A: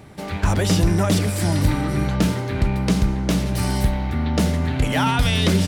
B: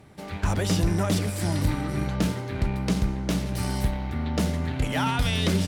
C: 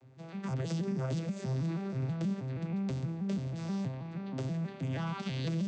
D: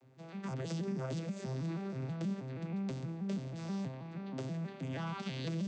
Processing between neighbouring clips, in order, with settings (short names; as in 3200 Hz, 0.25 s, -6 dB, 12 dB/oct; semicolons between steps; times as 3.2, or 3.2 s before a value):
added harmonics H 7 -30 dB, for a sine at -7.5 dBFS; gain -5.5 dB
arpeggiated vocoder major triad, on C3, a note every 0.16 s; limiter -21.5 dBFS, peak gain reduction 8.5 dB; high shelf 3100 Hz +8.5 dB; gain -5 dB
HPF 150 Hz; gain -2 dB